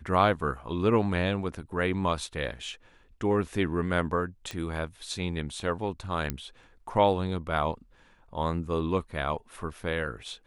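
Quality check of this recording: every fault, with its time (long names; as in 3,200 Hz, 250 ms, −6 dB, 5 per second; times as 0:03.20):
0:04.51: click −21 dBFS
0:06.30: click −13 dBFS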